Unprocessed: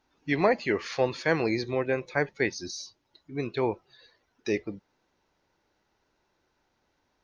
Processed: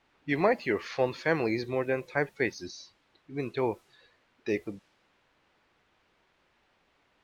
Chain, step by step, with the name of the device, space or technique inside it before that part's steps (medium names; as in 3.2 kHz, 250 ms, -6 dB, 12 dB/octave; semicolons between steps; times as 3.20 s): cassette deck with a dynamic noise filter (white noise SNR 29 dB; level-controlled noise filter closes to 2.8 kHz, open at -26 dBFS); tone controls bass -1 dB, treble -6 dB; trim -1.5 dB